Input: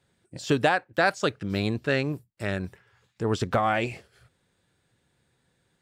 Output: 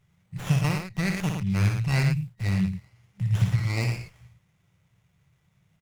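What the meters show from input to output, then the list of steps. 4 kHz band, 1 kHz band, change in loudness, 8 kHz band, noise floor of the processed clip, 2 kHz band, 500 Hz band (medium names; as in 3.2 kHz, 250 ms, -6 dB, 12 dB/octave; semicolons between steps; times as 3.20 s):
-3.0 dB, -11.0 dB, +0.5 dB, +2.0 dB, -68 dBFS, -5.5 dB, -12.5 dB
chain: FFT band-reject 200–1900 Hz; on a send: multi-tap echo 58/110 ms -7/-7 dB; on the sum: harmonic-percussive split percussive -8 dB; sliding maximum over 9 samples; trim +7.5 dB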